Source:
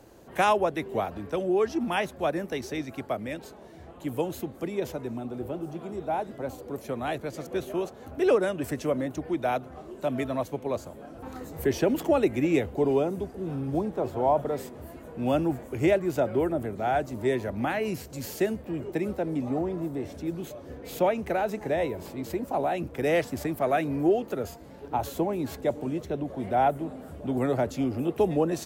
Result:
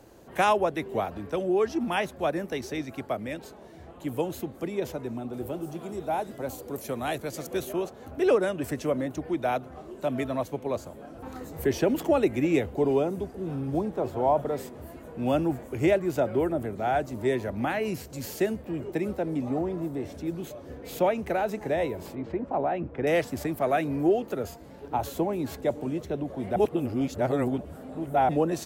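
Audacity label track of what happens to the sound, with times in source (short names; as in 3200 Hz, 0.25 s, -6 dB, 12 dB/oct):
5.330000	7.730000	high shelf 5100 Hz +11 dB
22.150000	23.070000	LPF 2000 Hz
26.560000	28.290000	reverse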